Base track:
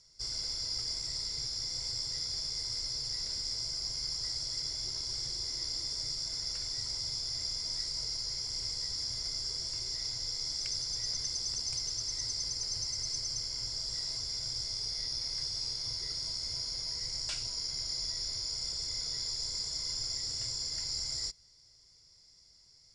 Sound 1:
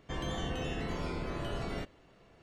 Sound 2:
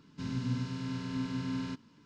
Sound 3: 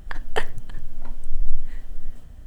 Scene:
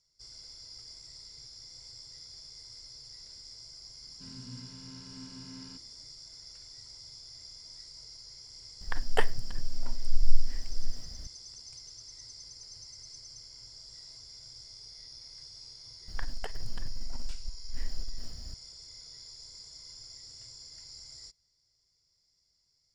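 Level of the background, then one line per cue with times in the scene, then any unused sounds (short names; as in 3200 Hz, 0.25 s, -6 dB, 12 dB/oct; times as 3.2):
base track -12.5 dB
4.02 add 2 -13 dB
8.81 add 3 -3 dB
16.08 add 3 -7.5 dB + negative-ratio compressor -22 dBFS
not used: 1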